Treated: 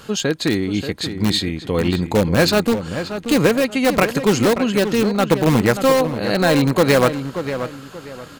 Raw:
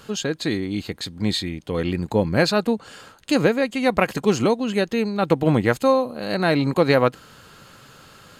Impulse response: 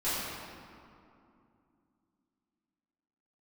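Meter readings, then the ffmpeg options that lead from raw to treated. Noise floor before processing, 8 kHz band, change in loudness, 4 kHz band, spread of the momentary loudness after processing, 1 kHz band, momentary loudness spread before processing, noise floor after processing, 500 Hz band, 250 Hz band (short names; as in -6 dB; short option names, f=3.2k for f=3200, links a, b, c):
-48 dBFS, +8.0 dB, +3.5 dB, +5.5 dB, 10 LU, +3.0 dB, 8 LU, -39 dBFS, +3.5 dB, +4.5 dB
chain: -filter_complex "[0:a]asplit=2[a][b];[b]aeval=exprs='(mod(4.73*val(0)+1,2)-1)/4.73':c=same,volume=-7.5dB[c];[a][c]amix=inputs=2:normalize=0,asplit=2[d][e];[e]adelay=582,lowpass=f=2.9k:p=1,volume=-9.5dB,asplit=2[f][g];[g]adelay=582,lowpass=f=2.9k:p=1,volume=0.3,asplit=2[h][i];[i]adelay=582,lowpass=f=2.9k:p=1,volume=0.3[j];[d][f][h][j]amix=inputs=4:normalize=0,volume=2dB"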